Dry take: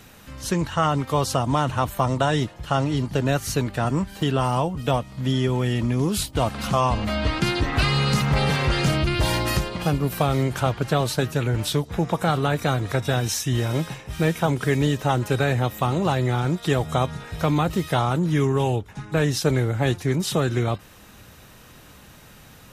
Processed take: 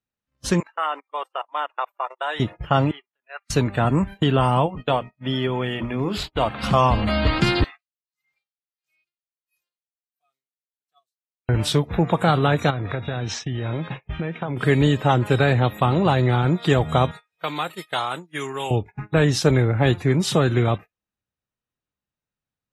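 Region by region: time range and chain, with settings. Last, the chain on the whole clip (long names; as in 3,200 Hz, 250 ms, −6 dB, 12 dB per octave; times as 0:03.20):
0:00.60–0:02.40: dynamic equaliser 5,300 Hz, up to −6 dB, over −43 dBFS, Q 0.71 + output level in coarse steps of 23 dB + high-pass filter 870 Hz
0:02.91–0:03.50: high-pass filter 1,400 Hz + high-frequency loss of the air 420 metres
0:04.66–0:06.63: running median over 5 samples + parametric band 120 Hz −7.5 dB 2.9 octaves + mains-hum notches 60/120/180/240/300/360/420 Hz
0:07.64–0:11.49: first difference + tremolo with a sine in dB 1.5 Hz, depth 38 dB
0:12.70–0:14.57: low-pass filter 4,400 Hz + downward compressor 16 to 1, threshold −25 dBFS
0:17.11–0:18.71: high-pass filter 1,400 Hz 6 dB per octave + high-shelf EQ 8,100 Hz +9.5 dB
whole clip: Bessel low-pass filter 8,300 Hz, order 8; noise gate −34 dBFS, range −23 dB; noise reduction from a noise print of the clip's start 24 dB; level +3.5 dB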